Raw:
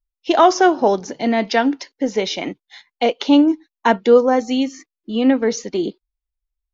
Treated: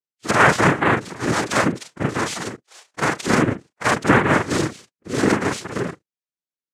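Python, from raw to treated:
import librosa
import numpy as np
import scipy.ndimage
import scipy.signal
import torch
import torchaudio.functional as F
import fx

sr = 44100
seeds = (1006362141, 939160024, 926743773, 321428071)

y = fx.frame_reverse(x, sr, frame_ms=101.0)
y = fx.pitch_keep_formants(y, sr, semitones=-2.5)
y = fx.noise_vocoder(y, sr, seeds[0], bands=3)
y = F.gain(torch.from_numpy(y), 1.0).numpy()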